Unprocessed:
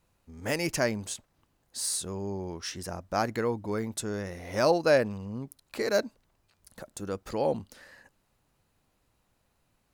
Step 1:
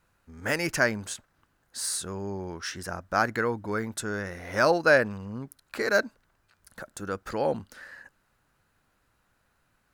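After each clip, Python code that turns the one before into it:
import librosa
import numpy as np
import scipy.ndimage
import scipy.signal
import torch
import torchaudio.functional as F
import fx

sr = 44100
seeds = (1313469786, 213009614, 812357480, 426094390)

y = fx.peak_eq(x, sr, hz=1500.0, db=11.0, octaves=0.72)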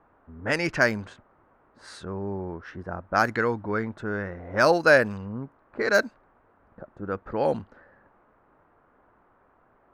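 y = fx.env_lowpass(x, sr, base_hz=420.0, full_db=-20.5)
y = fx.dmg_noise_band(y, sr, seeds[0], low_hz=200.0, high_hz=1400.0, level_db=-65.0)
y = y * librosa.db_to_amplitude(2.5)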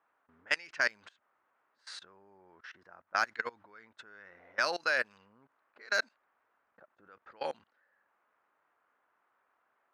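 y = fx.level_steps(x, sr, step_db=23)
y = fx.bandpass_q(y, sr, hz=3500.0, q=0.81)
y = y * librosa.db_to_amplitude(3.0)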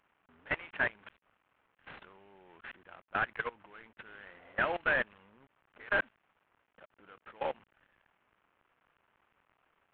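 y = fx.cvsd(x, sr, bps=16000)
y = y * librosa.db_to_amplitude(2.0)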